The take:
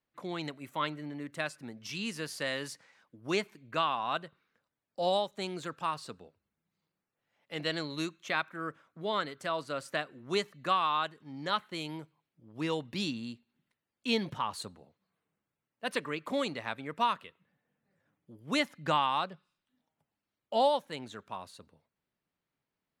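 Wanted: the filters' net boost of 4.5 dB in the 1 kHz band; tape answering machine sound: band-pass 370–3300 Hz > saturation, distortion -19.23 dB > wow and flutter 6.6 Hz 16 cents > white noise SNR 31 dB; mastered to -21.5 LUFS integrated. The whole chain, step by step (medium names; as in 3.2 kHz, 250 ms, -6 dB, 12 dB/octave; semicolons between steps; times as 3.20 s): band-pass 370–3300 Hz; peaking EQ 1 kHz +5.5 dB; saturation -17 dBFS; wow and flutter 6.6 Hz 16 cents; white noise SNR 31 dB; trim +11.5 dB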